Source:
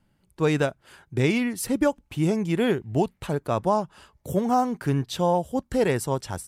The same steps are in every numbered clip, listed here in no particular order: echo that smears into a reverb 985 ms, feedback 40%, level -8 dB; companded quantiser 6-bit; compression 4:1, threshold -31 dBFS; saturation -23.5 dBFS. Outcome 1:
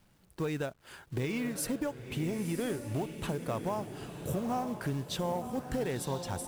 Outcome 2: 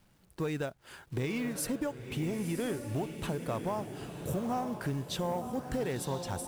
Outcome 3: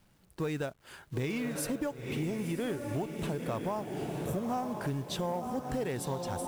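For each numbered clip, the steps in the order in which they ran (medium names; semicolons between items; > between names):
compression > saturation > companded quantiser > echo that smears into a reverb; companded quantiser > compression > echo that smears into a reverb > saturation; echo that smears into a reverb > compression > companded quantiser > saturation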